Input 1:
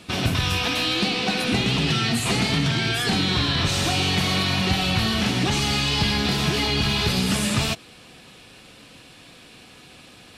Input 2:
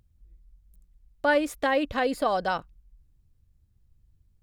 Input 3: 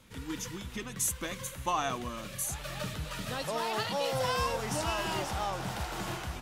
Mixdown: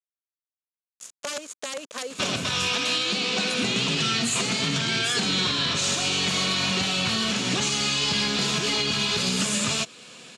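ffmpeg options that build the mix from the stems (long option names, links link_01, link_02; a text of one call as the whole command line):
ffmpeg -i stem1.wav -i stem2.wav -i stem3.wav -filter_complex "[0:a]adelay=2100,volume=3dB[link_01];[1:a]highpass=320,aeval=exprs='(mod(6.31*val(0)+1,2)-1)/6.31':channel_layout=same,volume=1dB,asplit=2[link_02][link_03];[2:a]volume=-12.5dB[link_04];[link_03]apad=whole_len=282907[link_05];[link_04][link_05]sidechaincompress=threshold=-27dB:ratio=8:attack=16:release=319[link_06];[link_02][link_06]amix=inputs=2:normalize=0,acrusher=bits=5:mix=0:aa=0.000001,acompressor=threshold=-29dB:ratio=4,volume=0dB[link_07];[link_01][link_07]amix=inputs=2:normalize=0,highpass=210,equalizer=frequency=320:width_type=q:width=4:gain=-8,equalizer=frequency=780:width_type=q:width=4:gain=-8,equalizer=frequency=1900:width_type=q:width=4:gain=-4,equalizer=frequency=6900:width_type=q:width=4:gain=9,lowpass=frequency=9700:width=0.5412,lowpass=frequency=9700:width=1.3066,alimiter=limit=-14.5dB:level=0:latency=1:release=257" out.wav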